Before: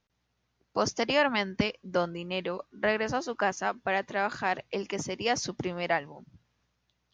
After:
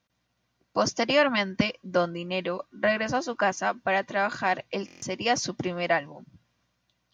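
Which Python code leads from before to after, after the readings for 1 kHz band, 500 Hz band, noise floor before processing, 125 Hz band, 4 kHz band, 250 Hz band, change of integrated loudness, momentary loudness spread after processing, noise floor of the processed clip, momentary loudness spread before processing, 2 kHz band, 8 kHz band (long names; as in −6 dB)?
+3.0 dB, +3.0 dB, −78 dBFS, +2.5 dB, +3.0 dB, +3.5 dB, +3.0 dB, 9 LU, −76 dBFS, 8 LU, +3.0 dB, +3.0 dB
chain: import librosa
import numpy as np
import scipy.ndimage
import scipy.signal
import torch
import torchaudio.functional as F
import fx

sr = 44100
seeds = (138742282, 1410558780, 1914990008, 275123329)

y = fx.low_shelf(x, sr, hz=71.0, db=-9.5)
y = fx.notch_comb(y, sr, f0_hz=430.0)
y = fx.buffer_glitch(y, sr, at_s=(4.86,), block=1024, repeats=6)
y = y * librosa.db_to_amplitude(4.5)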